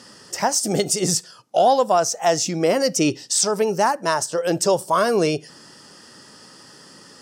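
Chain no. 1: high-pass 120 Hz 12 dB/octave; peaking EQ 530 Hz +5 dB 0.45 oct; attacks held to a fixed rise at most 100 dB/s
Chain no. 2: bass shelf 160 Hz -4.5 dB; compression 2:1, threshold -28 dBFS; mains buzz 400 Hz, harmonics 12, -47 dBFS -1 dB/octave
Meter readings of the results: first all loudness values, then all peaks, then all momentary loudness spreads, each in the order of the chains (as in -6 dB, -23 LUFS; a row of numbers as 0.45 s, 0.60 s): -23.0 LUFS, -27.0 LUFS; -6.5 dBFS, -13.5 dBFS; 12 LU, 16 LU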